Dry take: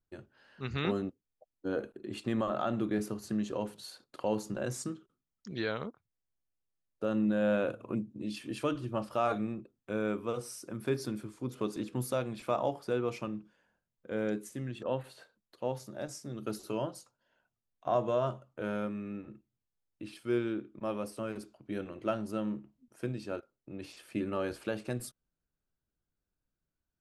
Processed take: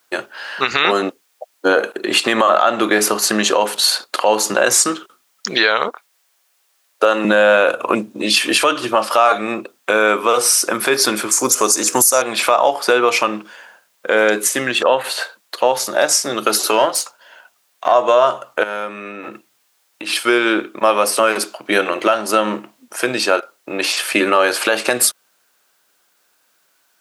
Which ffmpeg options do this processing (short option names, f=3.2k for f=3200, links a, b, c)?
-filter_complex "[0:a]asettb=1/sr,asplit=3[a][b][c];[a]atrim=end=5.884[d];[b]atrim=start=5.88:end=7.25,asetpts=PTS-STARTPTS,afade=t=in:d=0.004:c=qsin,afade=t=out:st=1.366:d=0.004:c=qsin,highpass=310[e];[c]atrim=start=7.246[f];[d][e]acrossfade=d=0.004:c1=hsin:c2=qsin[g];[g][f]acrossfade=d=0.004:c1=qsin:c2=hsin,asettb=1/sr,asplit=3[h][i][j];[h]atrim=end=11.314[k];[i]atrim=start=11.31:end=12.22,asetpts=PTS-STARTPTS,afade=t=in:d=0.004:c=qsin,afade=t=out:st=0.906:d=0.004:c=qsin,highshelf=f=4.7k:t=q:w=3:g=11[l];[j]atrim=start=12.216[m];[k][l]acrossfade=d=0.004:c1=hsin:c2=qsin[n];[n][m]acrossfade=d=0.004:c1=qsin:c2=hsin,asettb=1/sr,asplit=3[o][p][q];[o]atrim=end=16.684[r];[p]atrim=start=16.68:end=17.92,asetpts=PTS-STARTPTS,afade=t=in:d=0.004:c=qsin,afade=t=out:st=1.236:d=0.004:c=qsin,aeval=exprs='if(lt(val(0),0),0.708*val(0),val(0))':c=same[s];[q]atrim=start=17.916[t];[r][s]acrossfade=d=0.004:c1=hsin:c2=qsin[u];[u][t]acrossfade=d=0.004:c1=qsin:c2=hsin,asettb=1/sr,asplit=3[v][w][x];[v]atrim=end=18.634[y];[w]atrim=start=18.63:end=20.1,asetpts=PTS-STARTPTS,afade=t=in:d=0.004:c=qsin,afade=t=out:st=1.466:d=0.004:c=qsin,acompressor=threshold=-45dB:ratio=10:attack=3.2:release=140:knee=1:detection=peak[z];[x]atrim=start=20.096[aa];[y][z]acrossfade=d=0.004:c1=hsin:c2=qsin[ab];[ab][aa]acrossfade=d=0.004:c1=qsin:c2=hsin,highpass=760,acompressor=threshold=-43dB:ratio=4,alimiter=level_in=34.5dB:limit=-1dB:release=50:level=0:latency=1,volume=-1dB"